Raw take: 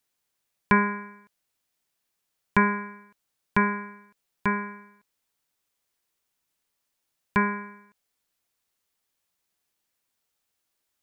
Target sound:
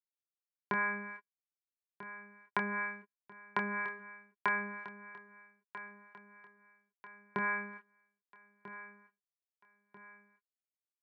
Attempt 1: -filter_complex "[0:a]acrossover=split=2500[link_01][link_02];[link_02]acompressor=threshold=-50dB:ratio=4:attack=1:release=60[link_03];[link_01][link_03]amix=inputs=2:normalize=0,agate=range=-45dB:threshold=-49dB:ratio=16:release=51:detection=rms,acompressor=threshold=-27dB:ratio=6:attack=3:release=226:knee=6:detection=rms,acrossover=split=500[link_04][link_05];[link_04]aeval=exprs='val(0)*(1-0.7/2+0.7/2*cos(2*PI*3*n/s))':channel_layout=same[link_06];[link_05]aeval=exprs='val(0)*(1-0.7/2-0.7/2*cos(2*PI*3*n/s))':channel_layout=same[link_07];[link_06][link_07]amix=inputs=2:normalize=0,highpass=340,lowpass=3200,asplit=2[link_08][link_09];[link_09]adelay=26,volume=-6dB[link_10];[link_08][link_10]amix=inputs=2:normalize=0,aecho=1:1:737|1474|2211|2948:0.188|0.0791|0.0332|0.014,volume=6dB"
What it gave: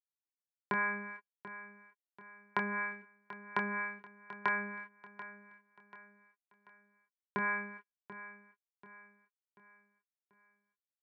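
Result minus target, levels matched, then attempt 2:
echo 555 ms early
-filter_complex "[0:a]acrossover=split=2500[link_01][link_02];[link_02]acompressor=threshold=-50dB:ratio=4:attack=1:release=60[link_03];[link_01][link_03]amix=inputs=2:normalize=0,agate=range=-45dB:threshold=-49dB:ratio=16:release=51:detection=rms,acompressor=threshold=-27dB:ratio=6:attack=3:release=226:knee=6:detection=rms,acrossover=split=500[link_04][link_05];[link_04]aeval=exprs='val(0)*(1-0.7/2+0.7/2*cos(2*PI*3*n/s))':channel_layout=same[link_06];[link_05]aeval=exprs='val(0)*(1-0.7/2-0.7/2*cos(2*PI*3*n/s))':channel_layout=same[link_07];[link_06][link_07]amix=inputs=2:normalize=0,highpass=340,lowpass=3200,asplit=2[link_08][link_09];[link_09]adelay=26,volume=-6dB[link_10];[link_08][link_10]amix=inputs=2:normalize=0,aecho=1:1:1292|2584|3876|5168:0.188|0.0791|0.0332|0.014,volume=6dB"

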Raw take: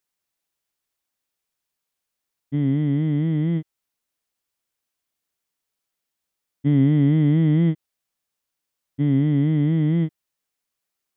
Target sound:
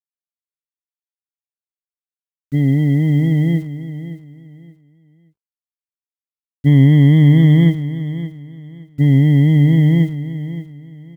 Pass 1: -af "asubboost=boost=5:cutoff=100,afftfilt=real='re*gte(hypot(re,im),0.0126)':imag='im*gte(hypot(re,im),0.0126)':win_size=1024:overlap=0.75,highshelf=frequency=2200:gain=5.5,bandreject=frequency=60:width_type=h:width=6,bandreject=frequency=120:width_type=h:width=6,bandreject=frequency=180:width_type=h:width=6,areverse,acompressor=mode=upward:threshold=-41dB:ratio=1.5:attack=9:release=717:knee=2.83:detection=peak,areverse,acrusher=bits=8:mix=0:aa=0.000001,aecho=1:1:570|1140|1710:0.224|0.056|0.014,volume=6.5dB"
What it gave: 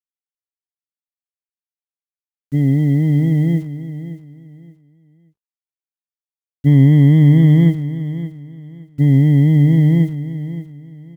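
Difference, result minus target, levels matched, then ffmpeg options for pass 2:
4,000 Hz band −6.0 dB
-af "asubboost=boost=5:cutoff=100,afftfilt=real='re*gte(hypot(re,im),0.0126)':imag='im*gte(hypot(re,im),0.0126)':win_size=1024:overlap=0.75,highshelf=frequency=2200:gain=14.5,bandreject=frequency=60:width_type=h:width=6,bandreject=frequency=120:width_type=h:width=6,bandreject=frequency=180:width_type=h:width=6,areverse,acompressor=mode=upward:threshold=-41dB:ratio=1.5:attack=9:release=717:knee=2.83:detection=peak,areverse,acrusher=bits=8:mix=0:aa=0.000001,aecho=1:1:570|1140|1710:0.224|0.056|0.014,volume=6.5dB"

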